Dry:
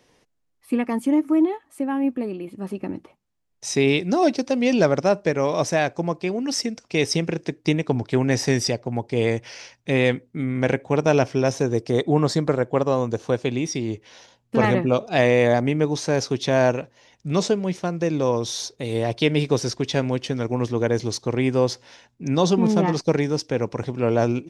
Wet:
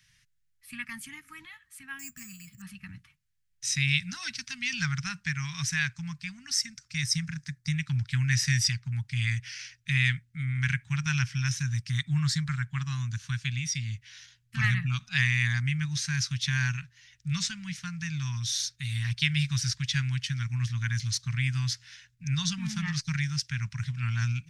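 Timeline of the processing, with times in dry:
1.99–2.62 careless resampling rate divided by 6×, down filtered, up hold
6.2–7.72 bell 2800 Hz -5 dB -> -13 dB
whole clip: Chebyshev band-stop 140–1600 Hz, order 3

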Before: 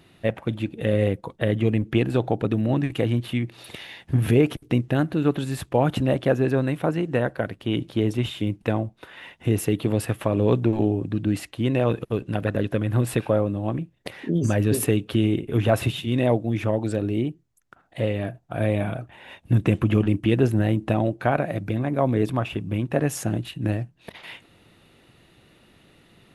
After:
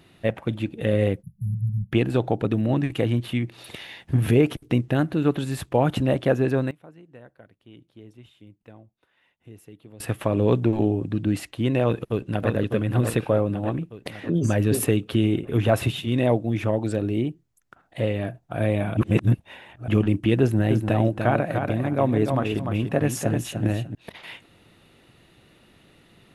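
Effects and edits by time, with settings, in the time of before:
1.23–1.92 spectral delete 210–10000 Hz
6.32–10.39 dip -23.5 dB, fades 0.39 s logarithmic
11.83–12.5 echo throw 0.6 s, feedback 55%, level -5.5 dB
18.97–19.88 reverse
20.41–23.95 feedback echo 0.295 s, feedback 20%, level -6 dB

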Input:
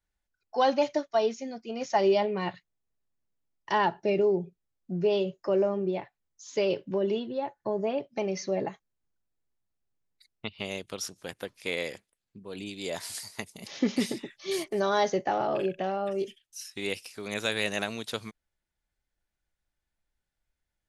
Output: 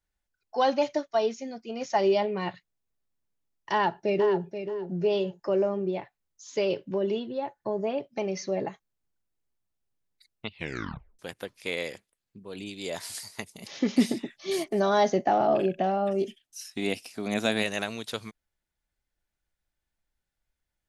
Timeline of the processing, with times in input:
3.71–4.43 echo throw 0.48 s, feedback 20%, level -9 dB
10.51 tape stop 0.68 s
13.96–17.62 small resonant body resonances 240/680 Hz, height 7 dB -> 12 dB, ringing for 25 ms

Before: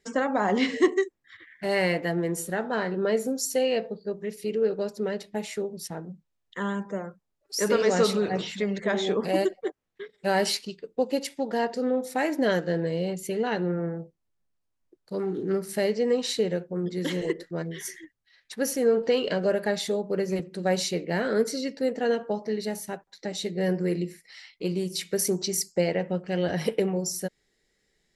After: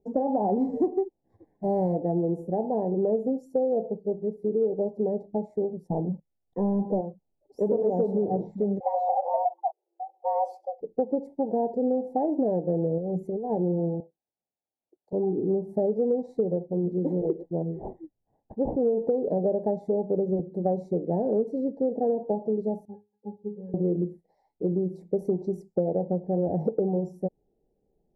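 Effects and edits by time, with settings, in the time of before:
0.58–1.94 spectral whitening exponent 0.6
5.88–7.01 sample leveller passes 2
8.8–10.81 frequency shift +340 Hz
12.98–13.5 negative-ratio compressor -33 dBFS
14–15.13 weighting filter ITU-R 468
17.43–18.8 decimation joined by straight lines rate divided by 8×
22.85–23.74 octave resonator G#, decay 0.22 s
whole clip: elliptic low-pass 820 Hz, stop band 40 dB; compressor, threshold -25 dBFS; gain +4 dB

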